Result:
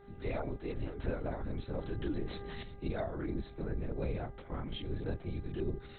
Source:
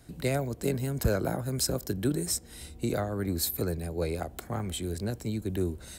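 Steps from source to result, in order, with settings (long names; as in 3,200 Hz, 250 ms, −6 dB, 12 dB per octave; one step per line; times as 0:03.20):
0:03.33–0:03.83: high-shelf EQ 2,500 Hz −8.5 dB
brickwall limiter −21 dBFS, peak gain reduction 6.5 dB
multi-voice chorus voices 6, 0.41 Hz, delay 25 ms, depth 1.7 ms
linear-prediction vocoder at 8 kHz whisper
hum with harmonics 400 Hz, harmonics 5, −55 dBFS −8 dB per octave
0:01.73–0:02.63: envelope flattener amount 50%
level −3 dB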